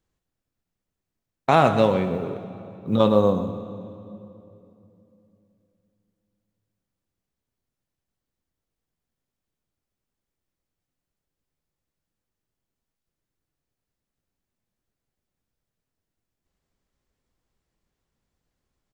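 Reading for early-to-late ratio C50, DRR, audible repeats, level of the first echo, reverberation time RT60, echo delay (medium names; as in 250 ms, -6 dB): 9.5 dB, 9.0 dB, 1, -13.5 dB, 2.9 s, 123 ms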